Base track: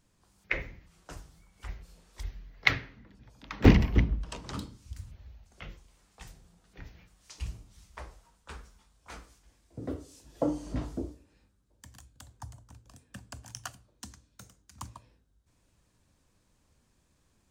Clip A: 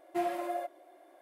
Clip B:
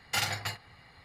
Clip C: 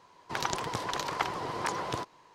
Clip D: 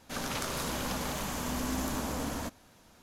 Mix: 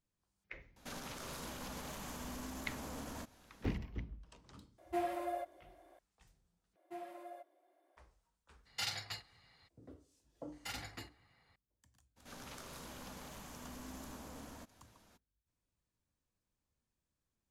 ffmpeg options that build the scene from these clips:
ffmpeg -i bed.wav -i cue0.wav -i cue1.wav -i cue2.wav -i cue3.wav -filter_complex "[4:a]asplit=2[link_01][link_02];[1:a]asplit=2[link_03][link_04];[2:a]asplit=2[link_05][link_06];[0:a]volume=-19.5dB[link_07];[link_01]alimiter=level_in=7.5dB:limit=-24dB:level=0:latency=1:release=99,volume=-7.5dB[link_08];[link_05]equalizer=frequency=4400:width_type=o:width=1.3:gain=8.5[link_09];[link_02]acompressor=mode=upward:threshold=-43dB:ratio=2.5:attack=14:release=76:knee=2.83:detection=peak[link_10];[link_07]asplit=2[link_11][link_12];[link_11]atrim=end=6.764[link_13];[link_04]atrim=end=1.21,asetpts=PTS-STARTPTS,volume=-15.5dB[link_14];[link_12]atrim=start=7.966[link_15];[link_08]atrim=end=3.02,asetpts=PTS-STARTPTS,volume=-5dB,afade=type=in:duration=0.004:curve=hsin,afade=type=out:start_time=3.016:duration=0.004:curve=hsin,adelay=760[link_16];[link_03]atrim=end=1.21,asetpts=PTS-STARTPTS,volume=-4.5dB,afade=type=in:duration=0.004:curve=hsin,afade=type=out:start_time=1.206:duration=0.004:curve=hsin,adelay=4780[link_17];[link_09]atrim=end=1.04,asetpts=PTS-STARTPTS,volume=-13.5dB,afade=type=in:duration=0.02,afade=type=out:start_time=1.02:duration=0.02,adelay=8650[link_18];[link_06]atrim=end=1.04,asetpts=PTS-STARTPTS,volume=-15dB,afade=type=in:duration=0.004:curve=hsin,afade=type=out:start_time=1.036:duration=0.004:curve=hsin,adelay=10520[link_19];[link_10]atrim=end=3.02,asetpts=PTS-STARTPTS,volume=-16dB,afade=type=in:duration=0.02,afade=type=out:start_time=3:duration=0.02,adelay=12160[link_20];[link_13][link_14]acrossfade=duration=0.004:curve1=hsin:curve2=hsin[link_21];[link_21][link_15]acrossfade=duration=0.004:curve1=hsin:curve2=hsin[link_22];[link_22][link_16][link_17][link_18][link_19][link_20]amix=inputs=6:normalize=0" out.wav

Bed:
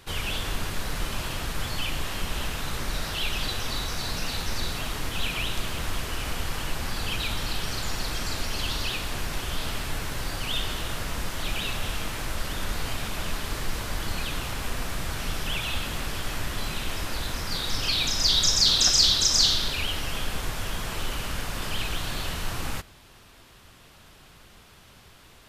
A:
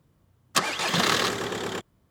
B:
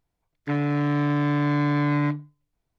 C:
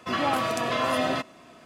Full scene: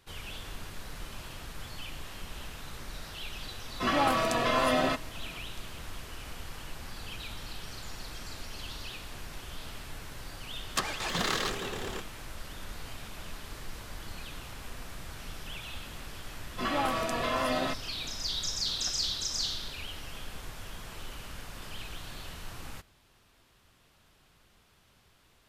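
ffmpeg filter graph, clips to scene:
ffmpeg -i bed.wav -i cue0.wav -i cue1.wav -i cue2.wav -filter_complex "[3:a]asplit=2[link_01][link_02];[0:a]volume=-12dB[link_03];[link_01]atrim=end=1.65,asetpts=PTS-STARTPTS,volume=-1dB,afade=type=in:duration=0.004:curve=hsin,afade=type=out:start_time=1.646:duration=0.004:curve=hsin,adelay=3740[link_04];[1:a]atrim=end=2.1,asetpts=PTS-STARTPTS,volume=-7.5dB,afade=type=in:duration=0.004:curve=hsin,afade=type=out:start_time=2.096:duration=0.004:curve=hsin,adelay=10210[link_05];[link_02]atrim=end=1.65,asetpts=PTS-STARTPTS,volume=-4.5dB,afade=type=in:duration=0.004:curve=hsin,afade=type=out:start_time=1.646:duration=0.004:curve=hsin,adelay=728532S[link_06];[link_03][link_04][link_05][link_06]amix=inputs=4:normalize=0" out.wav

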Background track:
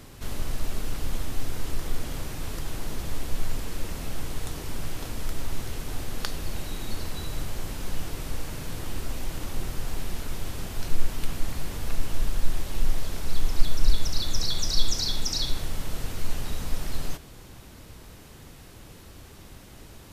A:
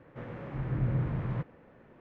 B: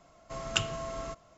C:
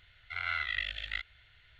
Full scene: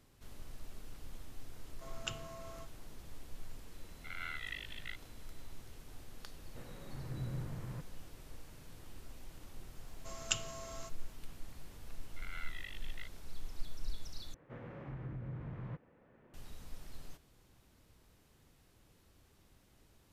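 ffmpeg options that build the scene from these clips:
ffmpeg -i bed.wav -i cue0.wav -i cue1.wav -i cue2.wav -filter_complex "[2:a]asplit=2[link_01][link_02];[3:a]asplit=2[link_03][link_04];[1:a]asplit=2[link_05][link_06];[0:a]volume=-19.5dB[link_07];[link_03]aeval=exprs='val(0)+0.000794*sin(2*PI*4000*n/s)':channel_layout=same[link_08];[link_02]aemphasis=mode=production:type=75fm[link_09];[link_06]alimiter=level_in=4.5dB:limit=-24dB:level=0:latency=1:release=481,volume=-4.5dB[link_10];[link_07]asplit=2[link_11][link_12];[link_11]atrim=end=14.344[link_13];[link_10]atrim=end=2,asetpts=PTS-STARTPTS,volume=-7dB[link_14];[link_12]atrim=start=16.336[link_15];[link_01]atrim=end=1.37,asetpts=PTS-STARTPTS,volume=-12.5dB,afade=type=in:duration=0.004:curve=hsin,afade=type=out:start_time=1.366:duration=0.004:curve=hsin,adelay=1510[link_16];[link_08]atrim=end=1.79,asetpts=PTS-STARTPTS,volume=-10dB,afade=type=in:duration=0.004:curve=hsin,afade=type=out:start_time=1.786:duration=0.004:curve=hsin,adelay=3740[link_17];[link_05]atrim=end=2,asetpts=PTS-STARTPTS,volume=-11.5dB,afade=type=in:duration=0.004:curve=hsin,afade=type=out:start_time=1.996:duration=0.004:curve=hsin,adelay=6390[link_18];[link_09]atrim=end=1.37,asetpts=PTS-STARTPTS,volume=-10.5dB,afade=type=in:duration=0.004:curve=hsin,afade=type=out:start_time=1.366:duration=0.004:curve=hsin,adelay=9750[link_19];[link_04]atrim=end=1.79,asetpts=PTS-STARTPTS,volume=-14.5dB,afade=type=in:duration=0.004:curve=hsin,afade=type=out:start_time=1.786:duration=0.004:curve=hsin,adelay=523026S[link_20];[link_13][link_14]acrossfade=duration=0.004:curve1=hsin:curve2=hsin[link_21];[link_21][link_15]acrossfade=duration=0.004:curve1=hsin:curve2=hsin[link_22];[link_22][link_16][link_17][link_18][link_19][link_20]amix=inputs=6:normalize=0" out.wav

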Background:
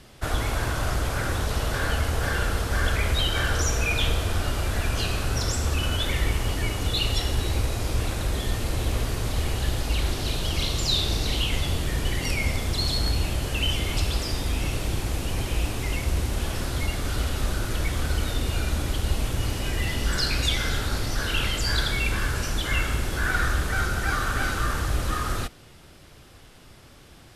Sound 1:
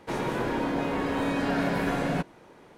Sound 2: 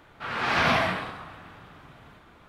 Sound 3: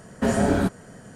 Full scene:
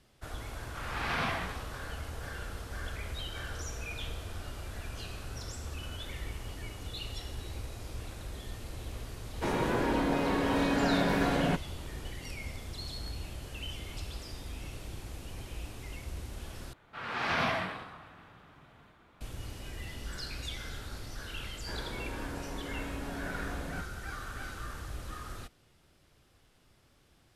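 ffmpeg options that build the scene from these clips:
ffmpeg -i bed.wav -i cue0.wav -i cue1.wav -filter_complex "[2:a]asplit=2[link_01][link_02];[1:a]asplit=2[link_03][link_04];[0:a]volume=-15.5dB[link_05];[link_01]bandreject=frequency=630:width=12[link_06];[link_05]asplit=2[link_07][link_08];[link_07]atrim=end=16.734[link_09];[link_02]atrim=end=2.48,asetpts=PTS-STARTPTS,volume=-7.5dB[link_10];[link_08]atrim=start=19.206[link_11];[link_06]atrim=end=2.48,asetpts=PTS-STARTPTS,volume=-10dB,afade=type=in:duration=0.004:curve=hsin,afade=type=out:start_time=2.476:duration=0.004:curve=hsin,adelay=530[link_12];[link_03]atrim=end=2.77,asetpts=PTS-STARTPTS,volume=-1dB,afade=type=in:duration=0.004:curve=hsin,afade=type=out:start_time=2.766:duration=0.004:curve=hsin,adelay=9340[link_13];[link_04]atrim=end=2.77,asetpts=PTS-STARTPTS,volume=-14dB,afade=type=in:duration=0.004:curve=hsin,afade=type=out:start_time=2.766:duration=0.004:curve=hsin,adelay=21590[link_14];[link_09][link_10]acrossfade=duration=0.004:curve1=hsin:curve2=hsin[link_15];[link_15][link_11]acrossfade=duration=0.004:curve1=hsin:curve2=hsin[link_16];[link_16][link_12][link_13][link_14]amix=inputs=4:normalize=0" out.wav

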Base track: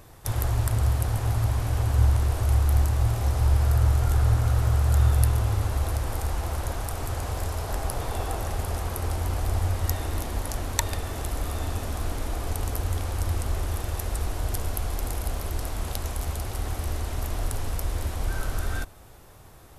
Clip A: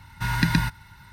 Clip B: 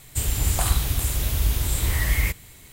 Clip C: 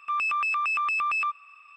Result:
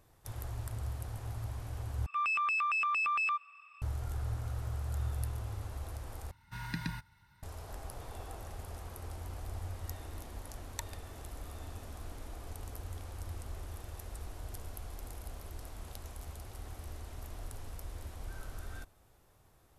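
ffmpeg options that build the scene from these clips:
ffmpeg -i bed.wav -i cue0.wav -i cue1.wav -i cue2.wav -filter_complex "[0:a]volume=-15.5dB,asplit=3[link_01][link_02][link_03];[link_01]atrim=end=2.064[link_04];[3:a]atrim=end=1.76,asetpts=PTS-STARTPTS,volume=-5dB[link_05];[link_02]atrim=start=3.816:end=6.314[link_06];[1:a]atrim=end=1.12,asetpts=PTS-STARTPTS,volume=-16.5dB[link_07];[link_03]atrim=start=7.426[link_08];[link_04][link_05]acrossfade=duration=0.004:curve1=hsin:curve2=hsin[link_09];[link_09][link_06]acrossfade=duration=0.004:curve1=hsin:curve2=hsin[link_10];[link_10][link_07]acrossfade=duration=0.004:curve1=hsin:curve2=hsin[link_11];[link_11][link_08]acrossfade=duration=0.004:curve1=hsin:curve2=hsin" out.wav

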